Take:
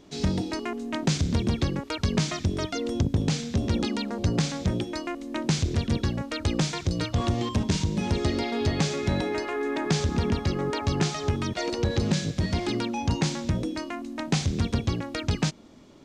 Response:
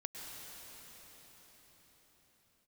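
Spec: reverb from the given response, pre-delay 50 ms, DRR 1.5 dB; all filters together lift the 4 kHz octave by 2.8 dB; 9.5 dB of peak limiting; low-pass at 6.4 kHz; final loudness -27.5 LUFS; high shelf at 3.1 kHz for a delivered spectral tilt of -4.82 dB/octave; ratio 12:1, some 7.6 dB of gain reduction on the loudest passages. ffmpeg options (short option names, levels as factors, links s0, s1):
-filter_complex "[0:a]lowpass=6400,highshelf=f=3100:g=-4,equalizer=f=4000:t=o:g=7,acompressor=threshold=0.0447:ratio=12,alimiter=limit=0.075:level=0:latency=1,asplit=2[s0][s1];[1:a]atrim=start_sample=2205,adelay=50[s2];[s1][s2]afir=irnorm=-1:irlink=0,volume=0.944[s3];[s0][s3]amix=inputs=2:normalize=0,volume=1.5"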